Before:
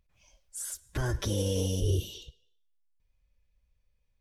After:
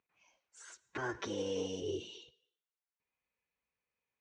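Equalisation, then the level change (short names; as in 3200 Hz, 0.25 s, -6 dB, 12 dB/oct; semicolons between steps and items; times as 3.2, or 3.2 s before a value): air absorption 110 m; speaker cabinet 390–6700 Hz, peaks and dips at 580 Hz -10 dB, 3400 Hz -8 dB, 5000 Hz -10 dB; bell 1700 Hz -2 dB 0.21 oct; +1.5 dB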